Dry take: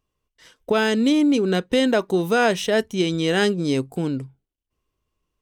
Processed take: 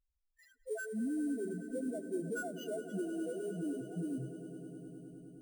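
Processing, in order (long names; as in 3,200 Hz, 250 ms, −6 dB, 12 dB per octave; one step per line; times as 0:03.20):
dynamic equaliser 1,800 Hz, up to +5 dB, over −35 dBFS, Q 0.78
downward compressor 16 to 1, threshold −31 dBFS, peak gain reduction 20 dB
spectral peaks only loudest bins 1
sample-rate reduction 9,100 Hz, jitter 0%
on a send: echo that builds up and dies away 103 ms, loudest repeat 5, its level −16.5 dB
on the sum: level +3 dB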